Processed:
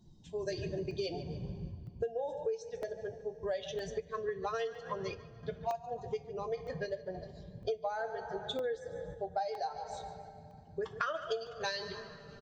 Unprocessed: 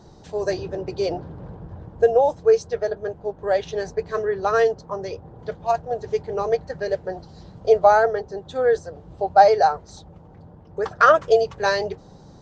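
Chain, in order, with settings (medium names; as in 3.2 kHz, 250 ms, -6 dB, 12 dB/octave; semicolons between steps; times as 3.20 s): expander on every frequency bin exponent 1.5; peaking EQ 3.2 kHz +8 dB 0.49 oct; on a send: frequency-shifting echo 145 ms, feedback 37%, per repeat +30 Hz, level -17 dB; on the sum: two-slope reverb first 0.23 s, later 2.5 s, from -19 dB, DRR 8.5 dB; dynamic bell 4.6 kHz, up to +6 dB, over -42 dBFS, Q 0.85; random-step tremolo; compression 10:1, threshold -33 dBFS, peak gain reduction 22 dB; crackling interface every 0.96 s, samples 64, zero, from 0.91 s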